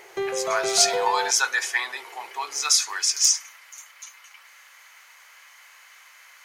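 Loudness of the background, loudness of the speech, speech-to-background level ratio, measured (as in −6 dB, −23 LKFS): −27.5 LKFS, −22.0 LKFS, 5.5 dB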